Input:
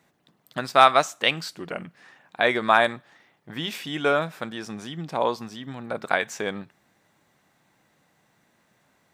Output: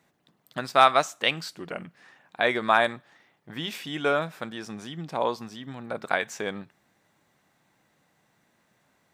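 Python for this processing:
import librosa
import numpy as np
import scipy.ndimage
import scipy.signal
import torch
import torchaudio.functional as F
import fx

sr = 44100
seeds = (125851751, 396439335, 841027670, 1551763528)

y = F.gain(torch.from_numpy(x), -2.5).numpy()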